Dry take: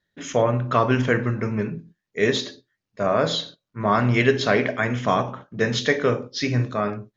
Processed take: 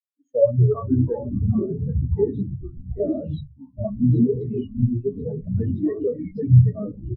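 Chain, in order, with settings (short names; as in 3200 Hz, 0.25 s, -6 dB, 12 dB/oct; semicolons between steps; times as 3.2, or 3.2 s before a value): sample leveller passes 3; low shelf 71 Hz +3 dB; notches 60/120/180 Hz; on a send: echo 0.783 s -3.5 dB; 3.9–5.29 on the sum: spectral gain 430–2500 Hz -13 dB; echoes that change speed 0.124 s, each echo -5 st, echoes 2; 4.58–5.2 low shelf 170 Hz +4 dB; in parallel at -8 dB: Schmitt trigger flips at -10.5 dBFS; on the sum: compressor 3:1, threshold -13 dBFS, peak gain reduction 7.5 dB; spectral expander 4:1; gain -1 dB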